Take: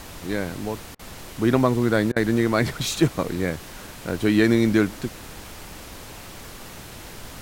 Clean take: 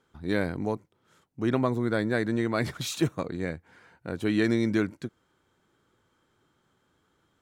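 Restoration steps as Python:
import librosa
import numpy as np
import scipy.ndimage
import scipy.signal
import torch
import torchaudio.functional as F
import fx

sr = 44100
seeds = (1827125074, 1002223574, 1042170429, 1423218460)

y = fx.fix_declick_ar(x, sr, threshold=6.5)
y = fx.fix_interpolate(y, sr, at_s=(0.95, 2.12), length_ms=41.0)
y = fx.noise_reduce(y, sr, print_start_s=0.86, print_end_s=1.36, reduce_db=30.0)
y = fx.fix_level(y, sr, at_s=1.25, step_db=-6.5)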